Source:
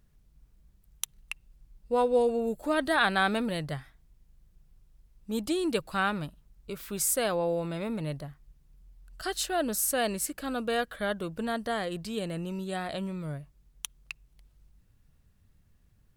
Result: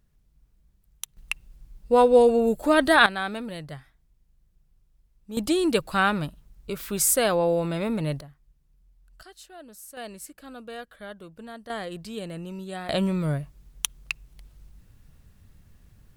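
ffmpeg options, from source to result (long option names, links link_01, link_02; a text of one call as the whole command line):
ffmpeg -i in.wav -af "asetnsamples=nb_out_samples=441:pad=0,asendcmd='1.17 volume volume 8dB;3.06 volume volume -4dB;5.37 volume volume 6dB;8.21 volume volume -5dB;9.23 volume volume -16.5dB;9.97 volume volume -9.5dB;11.7 volume volume -1.5dB;12.89 volume volume 10dB',volume=-2dB" out.wav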